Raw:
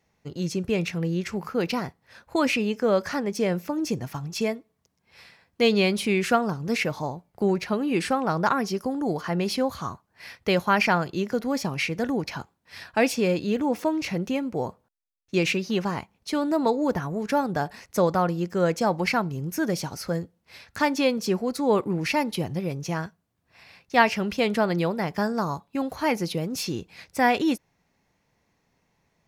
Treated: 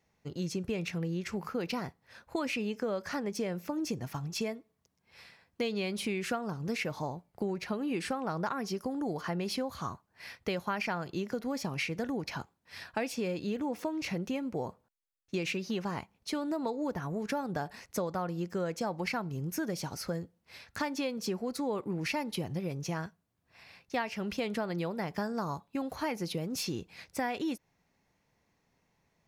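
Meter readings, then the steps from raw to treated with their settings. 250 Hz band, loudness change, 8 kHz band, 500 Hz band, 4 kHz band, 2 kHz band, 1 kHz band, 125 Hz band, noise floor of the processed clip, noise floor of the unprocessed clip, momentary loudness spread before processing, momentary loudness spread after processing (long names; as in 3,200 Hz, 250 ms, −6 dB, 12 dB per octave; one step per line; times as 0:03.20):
−9.0 dB, −9.5 dB, −6.5 dB, −10.0 dB, −8.5 dB, −10.0 dB, −11.0 dB, −8.0 dB, −76 dBFS, −72 dBFS, 9 LU, 6 LU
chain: downward compressor, threshold −26 dBFS, peak gain reduction 13 dB
level −4 dB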